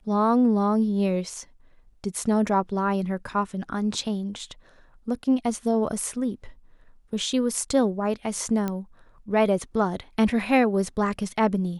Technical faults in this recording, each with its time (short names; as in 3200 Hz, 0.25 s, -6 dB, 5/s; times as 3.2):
8.68 pop -15 dBFS